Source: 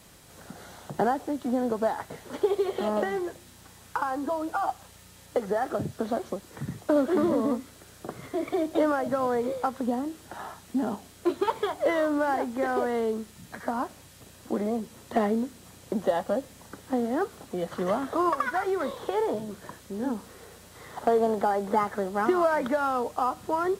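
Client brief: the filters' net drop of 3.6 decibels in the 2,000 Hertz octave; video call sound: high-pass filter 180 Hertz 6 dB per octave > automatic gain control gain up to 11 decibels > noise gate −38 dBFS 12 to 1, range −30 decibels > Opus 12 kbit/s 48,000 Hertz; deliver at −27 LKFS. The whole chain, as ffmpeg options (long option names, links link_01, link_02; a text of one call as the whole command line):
ffmpeg -i in.wav -af "highpass=frequency=180:poles=1,equalizer=frequency=2000:width_type=o:gain=-5,dynaudnorm=maxgain=11dB,agate=range=-30dB:threshold=-38dB:ratio=12,volume=-2.5dB" -ar 48000 -c:a libopus -b:a 12k out.opus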